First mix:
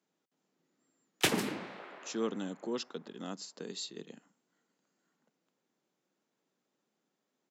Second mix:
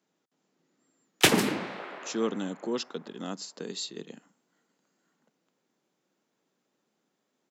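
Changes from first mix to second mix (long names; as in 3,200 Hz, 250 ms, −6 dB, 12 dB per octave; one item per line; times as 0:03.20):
speech +5.0 dB
background +8.0 dB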